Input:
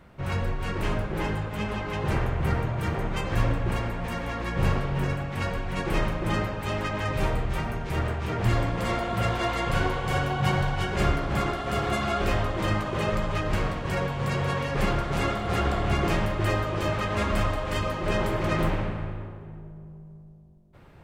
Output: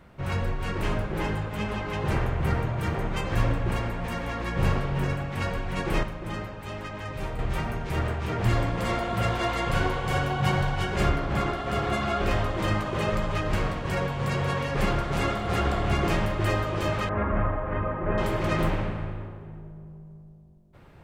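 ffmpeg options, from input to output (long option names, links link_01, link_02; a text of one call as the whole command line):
ffmpeg -i in.wav -filter_complex "[0:a]asettb=1/sr,asplit=3[link_01][link_02][link_03];[link_01]atrim=end=11.094[link_04];[link_02]atrim=start=11.09:end=12.31,asetpts=PTS-STARTPTS,afade=type=in:duration=0.004:curve=qsin,afade=type=out:start_time=1.216:duration=0.004:curve=qsin,highshelf=frequency=5800:gain=-6[link_05];[link_03]atrim=start=12.306[link_06];[link_04][link_05]acrossfade=duration=0.004:curve1=hsin:curve2=qsin[link_07];[link_07][link_06]acrossfade=duration=0.004:curve1=qsin:curve2=hsin,asettb=1/sr,asplit=3[link_08][link_09][link_10];[link_08]atrim=end=17.094[link_11];[link_09]atrim=start=17.09:end=18.18,asetpts=PTS-STARTPTS,afade=type=in:duration=0.004:curve=qsin,afade=type=out:start_time=1.086:duration=0.004:curve=qsin,lowpass=frequency=1800:width=0.5412,lowpass=frequency=1800:width=1.3066[link_12];[link_10]atrim=start=18.176[link_13];[link_11][link_12]acrossfade=duration=0.004:curve1=hsin:curve2=qsin[link_14];[link_14][link_13]acrossfade=duration=0.004:curve1=qsin:curve2=hsin,asplit=3[link_15][link_16][link_17];[link_15]atrim=end=6.032[link_18];[link_16]atrim=start=6.028:end=7.392,asetpts=PTS-STARTPTS,volume=-7dB[link_19];[link_17]atrim=start=7.388[link_20];[link_18][link_19]acrossfade=duration=0.004:curve1=hsin:curve2=hsin[link_21];[link_21][link_20]acrossfade=duration=0.004:curve1=hsin:curve2=hsin" out.wav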